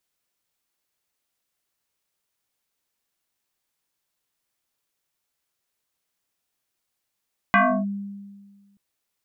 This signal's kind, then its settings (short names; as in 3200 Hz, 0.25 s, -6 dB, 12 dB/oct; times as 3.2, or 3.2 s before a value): FM tone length 1.23 s, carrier 200 Hz, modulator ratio 2.25, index 4.3, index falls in 0.31 s linear, decay 1.60 s, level -12 dB